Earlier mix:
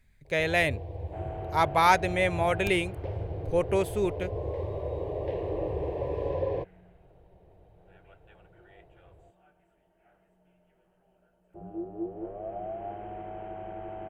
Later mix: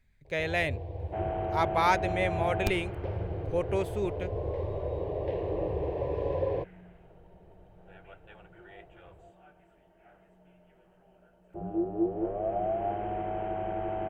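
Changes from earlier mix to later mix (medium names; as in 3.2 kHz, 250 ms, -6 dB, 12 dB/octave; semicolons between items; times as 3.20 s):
speech -4.0 dB; second sound +6.5 dB; master: add peaking EQ 11 kHz -6.5 dB 0.95 oct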